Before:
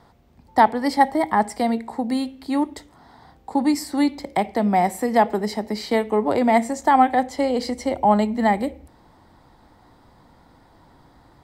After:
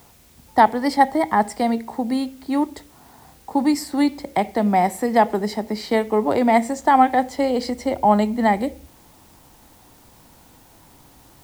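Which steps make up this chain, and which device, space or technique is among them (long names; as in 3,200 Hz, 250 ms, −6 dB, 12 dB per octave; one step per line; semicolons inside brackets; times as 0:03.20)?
plain cassette with noise reduction switched in (one half of a high-frequency compander decoder only; tape wow and flutter 11 cents; white noise bed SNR 33 dB)
level +1 dB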